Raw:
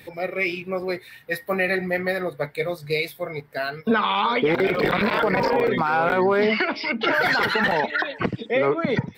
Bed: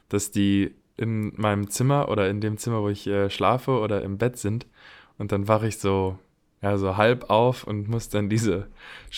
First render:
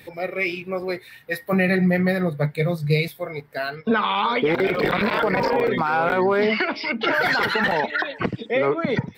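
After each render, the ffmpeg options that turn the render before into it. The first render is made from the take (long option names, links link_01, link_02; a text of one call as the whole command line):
ffmpeg -i in.wav -filter_complex "[0:a]asettb=1/sr,asplit=3[link_01][link_02][link_03];[link_01]atrim=end=1.524[link_04];[link_02]atrim=start=1.52:end=3.08,asetpts=PTS-STARTPTS,afade=type=in:duration=0.004:curve=qsin,afade=type=out:start_time=1.556:duration=0.004:curve=qsin,equalizer=frequency=160:width=1.5:gain=15[link_05];[link_03]atrim=start=3.076[link_06];[link_04][link_05]acrossfade=duration=0.004:curve1=hsin:curve2=qsin[link_07];[link_07][link_06]acrossfade=duration=0.004:curve1=qsin:curve2=hsin,asettb=1/sr,asplit=3[link_08][link_09][link_10];[link_08]atrim=end=3.754[link_11];[link_09]atrim=start=3.75:end=4.23,asetpts=PTS-STARTPTS,afade=type=in:duration=0.004:curve=qsin,afade=type=out:start_time=0.476:duration=0.004:curve=qsin,lowpass=5500[link_12];[link_10]atrim=start=4.226[link_13];[link_11][link_12]acrossfade=duration=0.004:curve1=hsin:curve2=qsin[link_14];[link_14][link_13]acrossfade=duration=0.004:curve1=qsin:curve2=hsin" out.wav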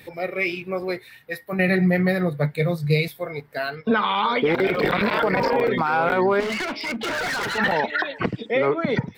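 ffmpeg -i in.wav -filter_complex "[0:a]asettb=1/sr,asplit=3[link_01][link_02][link_03];[link_01]atrim=end=3.984[link_04];[link_02]atrim=start=3.98:end=4.41,asetpts=PTS-STARTPTS,afade=type=in:duration=0.004:curve=qsin,afade=type=out:start_time=0.426:duration=0.004:curve=qsin,bandreject=frequency=2600:width=12[link_05];[link_03]atrim=start=4.406[link_06];[link_04][link_05]acrossfade=duration=0.004:curve1=hsin:curve2=qsin[link_07];[link_07][link_06]acrossfade=duration=0.004:curve1=qsin:curve2=hsin,asettb=1/sr,asplit=3[link_08][link_09][link_10];[link_08]atrim=end=6.404[link_11];[link_09]atrim=start=6.4:end=7.58,asetpts=PTS-STARTPTS,afade=type=in:duration=0.004:curve=qsin,afade=type=out:start_time=1.176:duration=0.004:curve=qsin,asoftclip=type=hard:threshold=-24dB[link_12];[link_10]atrim=start=7.576[link_13];[link_11][link_12]acrossfade=duration=0.004:curve1=hsin:curve2=qsin[link_14];[link_14][link_13]acrossfade=duration=0.004:curve1=qsin:curve2=hsin,asplit=2[link_15][link_16];[link_15]atrim=end=1.59,asetpts=PTS-STARTPTS,afade=type=out:start_time=0.91:duration=0.68:silence=0.398107[link_17];[link_16]atrim=start=1.59,asetpts=PTS-STARTPTS,afade=type=in:duration=0.004:curve=hsin:silence=0.398107[link_18];[link_17][link_18]concat=n=2:v=0:a=1" out.wav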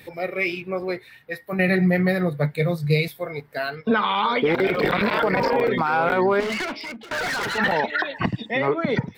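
ffmpeg -i in.wav -filter_complex "[0:a]asettb=1/sr,asplit=3[link_01][link_02][link_03];[link_01]atrim=end=0.614[link_04];[link_02]atrim=start=0.61:end=1.44,asetpts=PTS-STARTPTS,afade=type=in:duration=0.004:curve=qsin,afade=type=out:start_time=0.826:duration=0.004:curve=qsin,highshelf=frequency=5200:gain=-7[link_05];[link_03]atrim=start=1.436[link_06];[link_04][link_05]acrossfade=duration=0.004:curve1=hsin:curve2=qsin[link_07];[link_07][link_06]acrossfade=duration=0.004:curve1=qsin:curve2=hsin,asettb=1/sr,asplit=3[link_08][link_09][link_10];[link_08]atrim=end=8.144[link_11];[link_09]atrim=start=8.14:end=8.68,asetpts=PTS-STARTPTS,afade=type=in:duration=0.004:curve=qsin,afade=type=out:start_time=0.536:duration=0.004:curve=qsin,aecho=1:1:1.1:0.65,atrim=end_sample=23814[link_12];[link_10]atrim=start=8.676[link_13];[link_11][link_12]acrossfade=duration=0.004:curve1=hsin:curve2=qsin[link_14];[link_14][link_13]acrossfade=duration=0.004:curve1=qsin:curve2=hsin,asplit=2[link_15][link_16];[link_15]atrim=end=7.11,asetpts=PTS-STARTPTS,afade=type=out:start_time=6.63:duration=0.48:silence=0.0749894[link_17];[link_16]atrim=start=7.11,asetpts=PTS-STARTPTS,afade=type=in:duration=0.004:curve=hsin:silence=0.0749894[link_18];[link_17][link_18]concat=n=2:v=0:a=1" out.wav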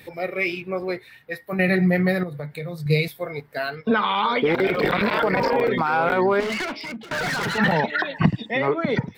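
ffmpeg -i in.wav -filter_complex "[0:a]asettb=1/sr,asplit=3[link_01][link_02][link_03];[link_01]atrim=end=2.234[link_04];[link_02]atrim=start=2.23:end=2.86,asetpts=PTS-STARTPTS,afade=type=in:duration=0.004:curve=qsin,afade=type=out:start_time=0.626:duration=0.004:curve=qsin,acompressor=threshold=-28dB:ratio=6:attack=3.2:release=140:knee=1:detection=peak[link_05];[link_03]atrim=start=2.856[link_06];[link_04][link_05]acrossfade=duration=0.004:curve1=hsin:curve2=qsin[link_07];[link_07][link_06]acrossfade=duration=0.004:curve1=qsin:curve2=hsin,asettb=1/sr,asplit=3[link_08][link_09][link_10];[link_08]atrim=end=6.844[link_11];[link_09]atrim=start=6.84:end=8.3,asetpts=PTS-STARTPTS,afade=type=in:duration=0.004:curve=qsin,afade=type=out:start_time=1.456:duration=0.004:curve=qsin,equalizer=frequency=160:width_type=o:width=0.77:gain=11.5[link_12];[link_10]atrim=start=8.296[link_13];[link_11][link_12]acrossfade=duration=0.004:curve1=hsin:curve2=qsin[link_14];[link_14][link_13]acrossfade=duration=0.004:curve1=qsin:curve2=hsin" out.wav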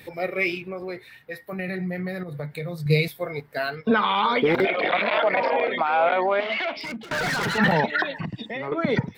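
ffmpeg -i in.wav -filter_complex "[0:a]asettb=1/sr,asplit=3[link_01][link_02][link_03];[link_01]atrim=end=0.574[link_04];[link_02]atrim=start=0.57:end=2.29,asetpts=PTS-STARTPTS,afade=type=in:duration=0.004:curve=qsin,afade=type=out:start_time=1.716:duration=0.004:curve=qsin,acompressor=threshold=-31dB:ratio=2.5:attack=3.2:release=140:knee=1:detection=peak[link_05];[link_03]atrim=start=2.286[link_06];[link_04][link_05]acrossfade=duration=0.004:curve1=hsin:curve2=qsin[link_07];[link_07][link_06]acrossfade=duration=0.004:curve1=qsin:curve2=hsin,asettb=1/sr,asplit=3[link_08][link_09][link_10];[link_08]atrim=end=4.654[link_11];[link_09]atrim=start=4.65:end=6.77,asetpts=PTS-STARTPTS,afade=type=in:duration=0.004:curve=qsin,afade=type=out:start_time=2.116:duration=0.004:curve=qsin,highpass=400,equalizer=frequency=420:width_type=q:width=4:gain=-8,equalizer=frequency=660:width_type=q:width=4:gain=8,equalizer=frequency=1000:width_type=q:width=4:gain=-3,equalizer=frequency=1500:width_type=q:width=4:gain=-4,equalizer=frequency=2300:width_type=q:width=4:gain=3,equalizer=frequency=3300:width_type=q:width=4:gain=4,lowpass=frequency=3700:width=0.5412,lowpass=frequency=3700:width=1.3066[link_12];[link_10]atrim=start=6.766[link_13];[link_11][link_12]acrossfade=duration=0.004:curve1=hsin:curve2=qsin[link_14];[link_14][link_13]acrossfade=duration=0.004:curve1=qsin:curve2=hsin,asettb=1/sr,asplit=3[link_15][link_16][link_17];[link_15]atrim=end=8.194[link_18];[link_16]atrim=start=8.19:end=8.72,asetpts=PTS-STARTPTS,afade=type=in:duration=0.004:curve=qsin,afade=type=out:start_time=0.526:duration=0.004:curve=qsin,acompressor=threshold=-28dB:ratio=5:attack=3.2:release=140:knee=1:detection=peak[link_19];[link_17]atrim=start=8.716[link_20];[link_18][link_19]acrossfade=duration=0.004:curve1=hsin:curve2=qsin[link_21];[link_21][link_20]acrossfade=duration=0.004:curve1=qsin:curve2=hsin" out.wav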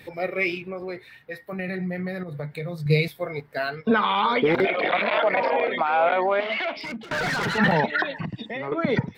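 ffmpeg -i in.wav -af "highshelf=frequency=7400:gain=-7" out.wav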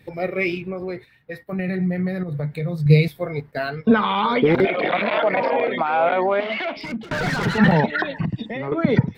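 ffmpeg -i in.wav -af "agate=range=-9dB:threshold=-42dB:ratio=16:detection=peak,lowshelf=frequency=320:gain=10" out.wav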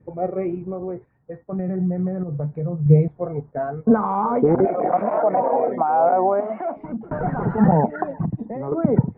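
ffmpeg -i in.wav -af "lowpass=frequency=1100:width=0.5412,lowpass=frequency=1100:width=1.3066,adynamicequalizer=threshold=0.0112:dfrequency=740:dqfactor=7.6:tfrequency=740:tqfactor=7.6:attack=5:release=100:ratio=0.375:range=3.5:mode=boostabove:tftype=bell" out.wav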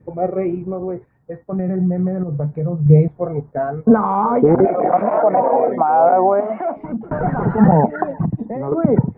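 ffmpeg -i in.wav -af "volume=4.5dB,alimiter=limit=-2dB:level=0:latency=1" out.wav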